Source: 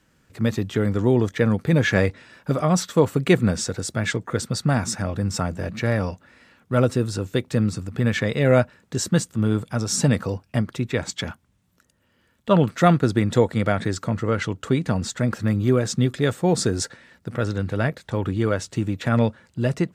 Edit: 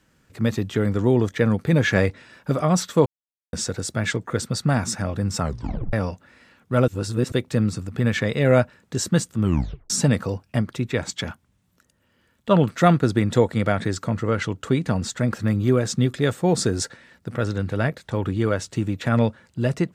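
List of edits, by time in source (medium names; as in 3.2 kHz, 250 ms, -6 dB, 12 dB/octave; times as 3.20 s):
3.06–3.53 s: mute
5.41 s: tape stop 0.52 s
6.88–7.32 s: reverse
9.42 s: tape stop 0.48 s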